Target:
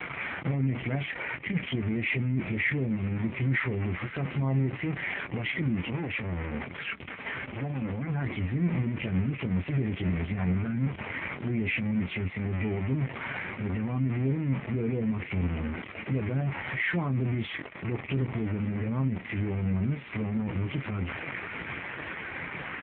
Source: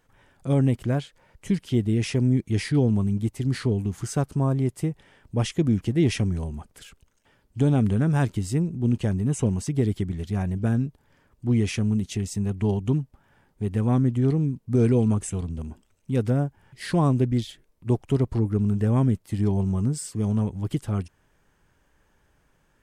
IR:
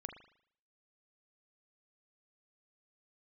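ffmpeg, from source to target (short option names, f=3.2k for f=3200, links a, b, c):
-filter_complex "[0:a]aeval=exprs='val(0)+0.5*0.0501*sgn(val(0))':c=same,bandreject=f=1.7k:w=16,alimiter=limit=-21dB:level=0:latency=1:release=22,asettb=1/sr,asplit=3[a][b][c];[a]atrim=end=5.794[d];[b]atrim=start=5.79:end=8.1,asetpts=PTS-STARTPTS,afade=t=in:d=0.004:c=qsin,afade=t=out:st=2.306:d=0.004:c=qsin,asoftclip=type=hard:threshold=-28.5dB[e];[c]atrim=start=8.096[f];[d][e]acrossfade=d=0.004:c1=hsin:c2=qsin[g];[g][f]acrossfade=d=0.004:c1=qsin:c2=hsin,acrusher=bits=9:mix=0:aa=0.000001,aeval=exprs='val(0)+0.00251*(sin(2*PI*60*n/s)+sin(2*PI*2*60*n/s)/2+sin(2*PI*3*60*n/s)/3+sin(2*PI*4*60*n/s)/4+sin(2*PI*5*60*n/s)/5)':c=same,lowpass=f=2.2k:t=q:w=3.7,aecho=1:1:940:0.0708[h];[1:a]atrim=start_sample=2205,atrim=end_sample=3087,asetrate=74970,aresample=44100[i];[h][i]afir=irnorm=-1:irlink=0,volume=7.5dB" -ar 8000 -c:a libopencore_amrnb -b:a 5150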